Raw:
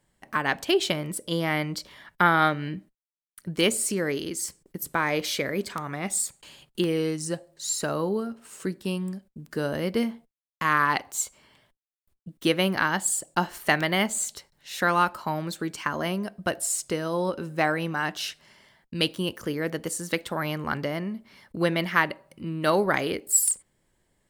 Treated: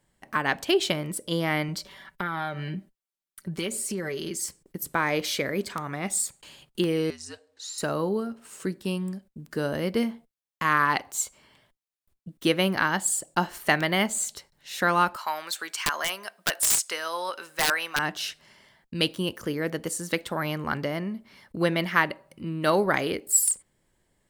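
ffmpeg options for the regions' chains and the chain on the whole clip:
-filter_complex "[0:a]asettb=1/sr,asplit=3[a][b][c];[a]atrim=end=1.684[d];[b]atrim=start=1.68:end=4.41,asetpts=PTS-STARTPTS,afade=t=in:d=0.004:c=qsin,afade=t=out:st=2.726:d=0.004:c=qsin,aecho=1:1:5.2:0.59,atrim=end_sample=120393,acompressor=threshold=-28dB:ratio=4:attack=3.2:release=140:knee=1:detection=peak[e];[c]atrim=start=4.406[f];[d][e]acrossfade=d=0.004:c1=hsin:c2=qsin[g];[g][f]acrossfade=d=0.004:c1=qsin:c2=hsin,asettb=1/sr,asplit=3[h][i][j];[h]atrim=end=7.104[k];[i]atrim=start=7.1:end=7.78,asetpts=PTS-STARTPTS,afade=t=in:d=0.004:c=qsin,afade=t=out:st=0.676:d=0.004:c=qsin,acrossover=split=420 6700:gain=0.2 1 0.178[l][m][n];[l][m][n]amix=inputs=3:normalize=0,acrossover=split=1100|3200[o][p][q];[o]acompressor=threshold=-44dB:ratio=4[r];[p]acompressor=threshold=-48dB:ratio=4[s];[q]acompressor=threshold=-37dB:ratio=4[t];[r][s][t]amix=inputs=3:normalize=0,afreqshift=-68[u];[j]atrim=start=7.776[v];[k][u]acrossfade=d=0.004:c1=hsin:c2=qsin[w];[w][v]acrossfade=d=0.004:c1=qsin:c2=hsin,asettb=1/sr,asplit=3[x][y][z];[x]atrim=end=15.164[aa];[y]atrim=start=15.16:end=17.99,asetpts=PTS-STARTPTS,afade=t=in:d=0.004:c=qsin,afade=t=out:st=2.826:d=0.004:c=qsin,highpass=1.1k,acontrast=56,aeval=exprs='(mod(5.31*val(0)+1,2)-1)/5.31':c=same[ab];[z]atrim=start=17.986[ac];[aa][ab]acrossfade=d=0.004:c1=hsin:c2=qsin[ad];[ad][ac]acrossfade=d=0.004:c1=qsin:c2=hsin"

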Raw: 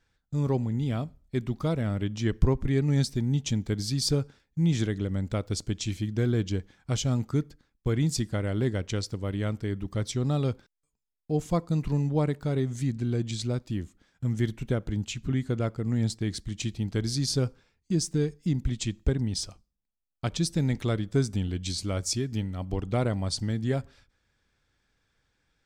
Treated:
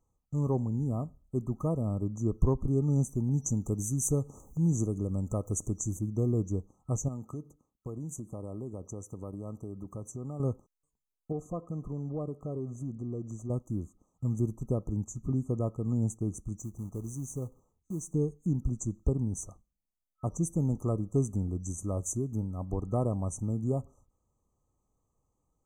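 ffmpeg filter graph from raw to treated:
-filter_complex "[0:a]asettb=1/sr,asplit=3[a][b][c];[a]atrim=end=3.294[d];[b]atrim=start=3.29:end=5.99,asetpts=PTS-STARTPTS,afade=t=in:d=0.004:c=qsin,afade=t=out:st=2.696:d=0.004:c=qsin,acompressor=mode=upward:threshold=-27dB:ratio=2.5:attack=3.2:release=140:knee=2.83:detection=peak,adynamicequalizer=threshold=0.00398:dfrequency=2800:dqfactor=0.7:tfrequency=2800:tqfactor=0.7:attack=5:release=100:ratio=0.375:range=3:mode=boostabove:tftype=highshelf[e];[c]atrim=start=5.986[f];[d][e]acrossfade=d=0.004:c1=hsin:c2=qsin[g];[g][f]acrossfade=d=0.004:c1=qsin:c2=hsin,asettb=1/sr,asplit=3[h][i][j];[h]atrim=end=7.084[k];[i]atrim=start=7.08:end=10.4,asetpts=PTS-STARTPTS,afade=t=in:d=0.004:c=qsin,afade=t=out:st=3.316:d=0.004:c=qsin,highpass=f=130:p=1,acompressor=threshold=-33dB:ratio=5:attack=3.2:release=140:knee=1:detection=peak[l];[j]atrim=start=10.396[m];[k][l]acrossfade=d=0.004:c1=hsin:c2=qsin[n];[n][m]acrossfade=d=0.004:c1=qsin:c2=hsin,asettb=1/sr,asplit=3[o][p][q];[o]atrim=end=11.324[r];[p]atrim=start=11.32:end=13.5,asetpts=PTS-STARTPTS,afade=t=in:d=0.004:c=qsin,afade=t=out:st=2.176:d=0.004:c=qsin,equalizer=f=910:t=o:w=0.23:g=-14,acompressor=threshold=-27dB:ratio=3:attack=3.2:release=140:knee=1:detection=peak,asplit=2[s][t];[t]highpass=f=720:p=1,volume=10dB,asoftclip=type=tanh:threshold=-19.5dB[u];[s][u]amix=inputs=2:normalize=0,lowpass=f=1.2k:p=1,volume=-6dB[v];[q]atrim=start=13.496[w];[r][v]acrossfade=d=0.004:c1=hsin:c2=qsin[x];[x][w]acrossfade=d=0.004:c1=qsin:c2=hsin,asettb=1/sr,asplit=3[y][z][aa];[y]atrim=end=16.584[ab];[z]atrim=start=16.58:end=18.14,asetpts=PTS-STARTPTS,afade=t=in:d=0.004:c=qsin,afade=t=out:st=1.556:d=0.004:c=qsin,acompressor=threshold=-42dB:ratio=1.5:attack=3.2:release=140:knee=1:detection=peak,acrusher=bits=5:mode=log:mix=0:aa=0.000001[ac];[aa]atrim=start=18.136[ad];[ab][ac]acrossfade=d=0.004:c1=hsin:c2=qsin[ae];[ae][ad]acrossfade=d=0.004:c1=qsin:c2=hsin,afftfilt=real='re*(1-between(b*sr/4096,1300,5900))':imag='im*(1-between(b*sr/4096,1300,5900))':win_size=4096:overlap=0.75,acontrast=39,volume=-8dB"

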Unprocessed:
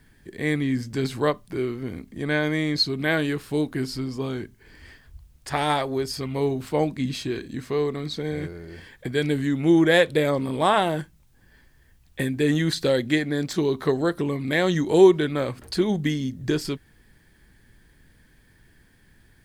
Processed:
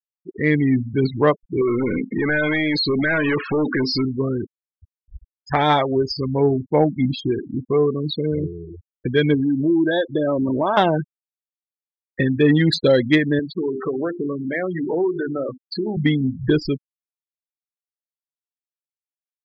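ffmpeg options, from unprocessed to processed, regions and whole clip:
-filter_complex "[0:a]asettb=1/sr,asplit=3[a][b][c];[a]atrim=end=1.614[d];[b]atrim=start=1.61:end=4.05,asetpts=PTS-STARTPTS,afade=t=in:d=0.004:c=qsin,afade=t=out:st=2.436:d=0.004:c=qsin,adynamicequalizer=threshold=0.00631:dfrequency=2600:dqfactor=4:tfrequency=2600:tqfactor=4:attack=5:release=100:ratio=0.375:range=1.5:mode=boostabove:tftype=bell,acompressor=threshold=-29dB:ratio=12:attack=3.2:release=140:knee=1:detection=peak,asplit=2[e][f];[f]highpass=f=720:p=1,volume=27dB,asoftclip=type=tanh:threshold=-18dB[g];[e][g]amix=inputs=2:normalize=0,lowpass=f=3.6k:p=1,volume=-6dB[h];[c]atrim=start=4.046[i];[d][h]acrossfade=d=0.004:c1=hsin:c2=qsin[j];[j][i]acrossfade=d=0.004:c1=qsin:c2=hsin,asettb=1/sr,asplit=3[k][l][m];[k]atrim=end=9.344[n];[l]atrim=start=9.34:end=10.77,asetpts=PTS-STARTPTS,afade=t=in:d=0.004:c=qsin,afade=t=out:st=1.426:d=0.004:c=qsin,aecho=1:1:3.2:0.4,atrim=end_sample=63063,acompressor=threshold=-23dB:ratio=4:attack=3.2:release=140:knee=1:detection=peak,asuperstop=centerf=2400:order=20:qfactor=1.6[o];[m]atrim=start=10.766[p];[n][o]acrossfade=d=0.004:c1=hsin:c2=qsin[q];[q][p]acrossfade=d=0.004:c1=qsin:c2=hsin,asettb=1/sr,asplit=3[r][s][t];[r]atrim=end=13.394[u];[s]atrim=start=13.39:end=15.97,asetpts=PTS-STARTPTS,afade=t=in:d=0.004:c=qsin,afade=t=out:st=2.576:d=0.004:c=qsin,bandreject=f=50:t=h:w=6,bandreject=f=100:t=h:w=6,bandreject=f=150:t=h:w=6,bandreject=f=200:t=h:w=6,bandreject=f=250:t=h:w=6,bandreject=f=300:t=h:w=6,bandreject=f=350:t=h:w=6,bandreject=f=400:t=h:w=6,acompressor=threshold=-26dB:ratio=4:attack=3.2:release=140:knee=1:detection=peak,highpass=200,lowpass=4.6k[v];[t]atrim=start=15.966[w];[u][v]acrossfade=d=0.004:c1=hsin:c2=qsin[x];[x][w]acrossfade=d=0.004:c1=qsin:c2=hsin,afftfilt=real='re*gte(hypot(re,im),0.0562)':imag='im*gte(hypot(re,im),0.0562)':win_size=1024:overlap=0.75,acontrast=78"

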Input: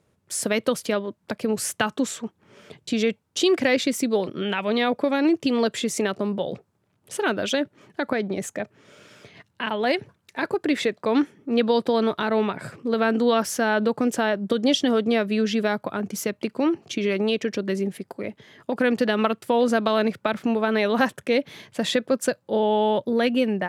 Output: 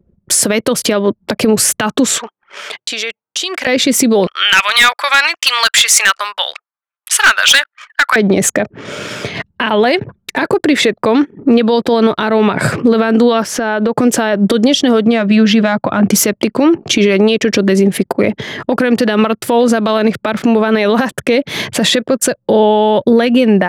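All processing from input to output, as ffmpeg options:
-filter_complex "[0:a]asettb=1/sr,asplit=3[a][b][c];[a]atrim=end=2.184[d];[b]atrim=start=2.18:end=3.67,asetpts=PTS-STARTPTS,afade=t=in:d=0.004:c=qsin,afade=t=out:st=1.486:d=0.004:c=qsin,highpass=990,acompressor=threshold=-44dB:ratio=4:attack=3.2:release=140:knee=1:detection=peak[e];[c]atrim=start=3.666[f];[d][e]acrossfade=d=0.004:c1=hsin:c2=qsin[g];[g][f]acrossfade=d=0.004:c1=qsin:c2=hsin,asettb=1/sr,asplit=3[h][i][j];[h]atrim=end=4.274[k];[i]atrim=start=4.27:end=8.16,asetpts=PTS-STARTPTS,afade=t=in:d=0.004:c=qsin,afade=t=out:st=3.886:d=0.004:c=qsin,highpass=f=1.2k:w=0.5412,highpass=f=1.2k:w=1.3066,asoftclip=type=hard:threshold=-25dB[l];[j]atrim=start=8.156[m];[k][l]acrossfade=d=0.004:c1=hsin:c2=qsin[n];[n][m]acrossfade=d=0.004:c1=qsin:c2=hsin,asettb=1/sr,asplit=3[o][p][q];[o]atrim=end=13.444[r];[p]atrim=start=13.44:end=13.98,asetpts=PTS-STARTPTS,afade=t=in:d=0.004:c=qsin,afade=t=out:st=0.536:d=0.004:c=qsin,lowpass=f=2.6k:p=1,lowshelf=f=130:g=-9.5,acompressor=threshold=-35dB:ratio=12:attack=3.2:release=140:knee=1:detection=peak[s];[q]atrim=start=13.976[t];[r][s]acrossfade=d=0.004:c1=hsin:c2=qsin[u];[u][t]acrossfade=d=0.004:c1=qsin:c2=hsin,asettb=1/sr,asplit=3[v][w][x];[v]atrim=end=15.014[y];[w]atrim=start=15.01:end=16.09,asetpts=PTS-STARTPTS,afade=t=in:d=0.004:c=qsin,afade=t=out:st=1.076:d=0.004:c=qsin,bandreject=f=420:w=5.3,adynamicsmooth=sensitivity=1:basefreq=4.5k[z];[x]atrim=start=16.086[aa];[y][z]acrossfade=d=0.004:c1=hsin:c2=qsin[ab];[ab][aa]acrossfade=d=0.004:c1=qsin:c2=hsin,acompressor=threshold=-29dB:ratio=16,anlmdn=0.000398,alimiter=level_in=26.5dB:limit=-1dB:release=50:level=0:latency=1,volume=-1dB"

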